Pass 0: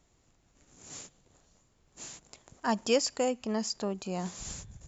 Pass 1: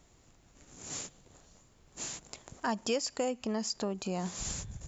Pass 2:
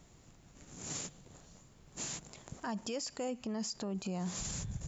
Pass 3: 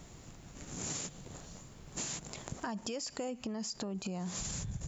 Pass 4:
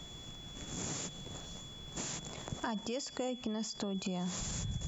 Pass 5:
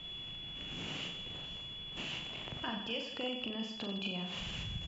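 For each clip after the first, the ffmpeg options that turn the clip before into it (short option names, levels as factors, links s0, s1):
-af "acompressor=threshold=0.0112:ratio=2.5,volume=1.88"
-af "equalizer=f=160:t=o:w=1:g=6,alimiter=level_in=2.24:limit=0.0631:level=0:latency=1:release=48,volume=0.447,volume=1.12"
-af "acompressor=threshold=0.00631:ratio=6,volume=2.51"
-filter_complex "[0:a]aeval=exprs='val(0)+0.00282*sin(2*PI*3400*n/s)':c=same,acrossover=split=170|1900[s0][s1][s2];[s2]alimiter=level_in=3.16:limit=0.0631:level=0:latency=1:release=73,volume=0.316[s3];[s0][s1][s3]amix=inputs=3:normalize=0,volume=1.19"
-filter_complex "[0:a]lowpass=f=2900:t=q:w=11,asplit=2[s0][s1];[s1]aecho=0:1:40|92|159.6|247.5|361.7:0.631|0.398|0.251|0.158|0.1[s2];[s0][s2]amix=inputs=2:normalize=0,volume=0.531"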